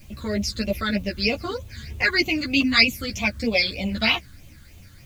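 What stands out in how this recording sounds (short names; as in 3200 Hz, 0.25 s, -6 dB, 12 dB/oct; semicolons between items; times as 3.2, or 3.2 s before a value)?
phasing stages 8, 3.2 Hz, lowest notch 720–1600 Hz; a quantiser's noise floor 10-bit, dither triangular; a shimmering, thickened sound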